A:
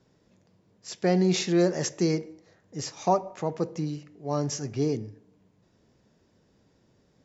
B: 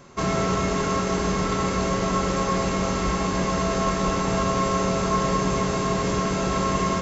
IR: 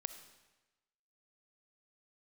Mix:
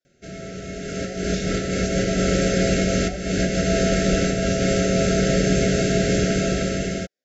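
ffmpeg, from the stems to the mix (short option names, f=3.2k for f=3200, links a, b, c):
-filter_complex "[0:a]highpass=680,flanger=delay=8.9:depth=9:regen=-47:speed=0.74:shape=sinusoidal,volume=-11.5dB,asplit=2[a][b];[1:a]adelay=50,volume=-3dB,afade=t=in:st=0.83:d=0.62:silence=0.375837[c];[b]apad=whole_len=311725[d];[c][d]sidechaincompress=threshold=-48dB:ratio=10:attack=22:release=256[e];[a][e]amix=inputs=2:normalize=0,dynaudnorm=f=160:g=11:m=8.5dB,asuperstop=centerf=1000:order=12:qfactor=1.5"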